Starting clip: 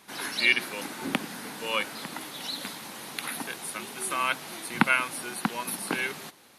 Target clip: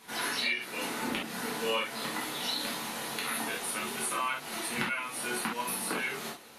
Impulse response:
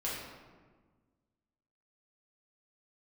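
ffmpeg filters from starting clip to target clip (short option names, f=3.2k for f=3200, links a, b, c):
-filter_complex "[0:a]acompressor=threshold=-32dB:ratio=12[a];[1:a]atrim=start_sample=2205,atrim=end_sample=3087,asetrate=39690,aresample=44100[b];[a][b]afir=irnorm=-1:irlink=0,volume=1.5dB"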